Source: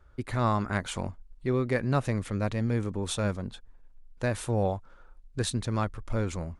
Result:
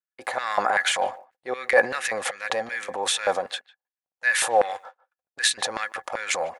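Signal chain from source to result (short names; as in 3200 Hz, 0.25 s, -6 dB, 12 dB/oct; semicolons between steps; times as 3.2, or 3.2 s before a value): gate -43 dBFS, range -44 dB; small resonant body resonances 520/770/1700 Hz, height 11 dB, ringing for 60 ms; transient shaper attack -7 dB, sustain +8 dB; LFO high-pass square 2.6 Hz 720–1900 Hz; speakerphone echo 0.15 s, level -21 dB; gain +7 dB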